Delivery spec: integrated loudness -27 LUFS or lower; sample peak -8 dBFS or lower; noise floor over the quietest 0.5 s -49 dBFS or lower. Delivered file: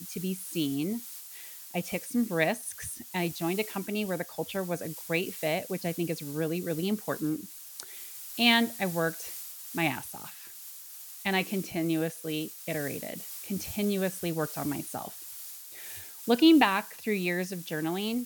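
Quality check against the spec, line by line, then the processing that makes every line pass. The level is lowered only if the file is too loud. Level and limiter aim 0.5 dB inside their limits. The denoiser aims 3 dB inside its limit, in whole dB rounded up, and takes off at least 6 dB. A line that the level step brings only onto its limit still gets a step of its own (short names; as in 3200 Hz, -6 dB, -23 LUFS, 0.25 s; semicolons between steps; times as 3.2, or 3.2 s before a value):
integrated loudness -30.0 LUFS: OK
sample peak -8.5 dBFS: OK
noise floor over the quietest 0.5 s -46 dBFS: fail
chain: denoiser 6 dB, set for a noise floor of -46 dBFS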